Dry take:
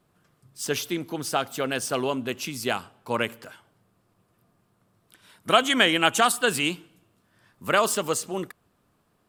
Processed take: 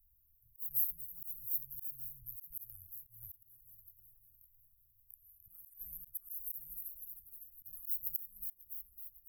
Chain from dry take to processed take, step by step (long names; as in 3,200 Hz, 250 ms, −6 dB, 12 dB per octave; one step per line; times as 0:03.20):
feedback delay that plays each chunk backwards 278 ms, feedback 65%, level −14 dB
inverse Chebyshev band-stop filter 240–6,400 Hz, stop band 70 dB
high-shelf EQ 8,200 Hz +10.5 dB
volume swells 223 ms
parametric band 12,000 Hz +13.5 dB 0.29 octaves
level +10 dB